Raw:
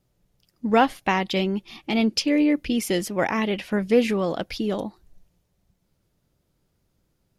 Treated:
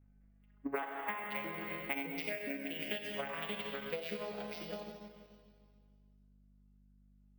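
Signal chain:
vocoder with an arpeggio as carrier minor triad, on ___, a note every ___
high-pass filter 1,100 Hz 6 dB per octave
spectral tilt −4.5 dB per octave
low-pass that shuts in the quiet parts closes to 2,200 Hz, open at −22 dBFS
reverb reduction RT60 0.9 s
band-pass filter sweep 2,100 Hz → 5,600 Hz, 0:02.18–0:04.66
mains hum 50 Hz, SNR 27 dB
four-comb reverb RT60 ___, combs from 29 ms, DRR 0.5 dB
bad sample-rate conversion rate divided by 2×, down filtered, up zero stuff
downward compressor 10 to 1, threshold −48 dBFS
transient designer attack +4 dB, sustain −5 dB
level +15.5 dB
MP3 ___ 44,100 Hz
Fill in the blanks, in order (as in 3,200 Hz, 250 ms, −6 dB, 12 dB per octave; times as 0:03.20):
C#3, 205 ms, 1.9 s, 112 kbit/s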